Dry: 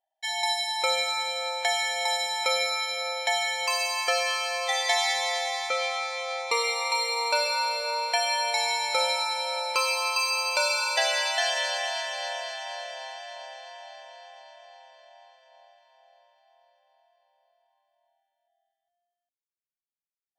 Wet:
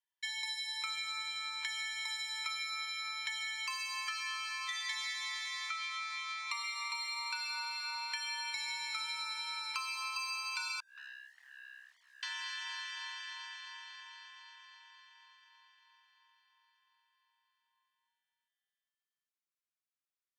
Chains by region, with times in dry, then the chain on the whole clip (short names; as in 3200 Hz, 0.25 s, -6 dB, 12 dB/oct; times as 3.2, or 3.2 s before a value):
10.8–12.23 steep low-pass 550 Hz 72 dB/oct + sample leveller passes 3
whole clip: steep high-pass 980 Hz 96 dB/oct; high shelf 7500 Hz -7.5 dB; compressor 4:1, threshold -38 dBFS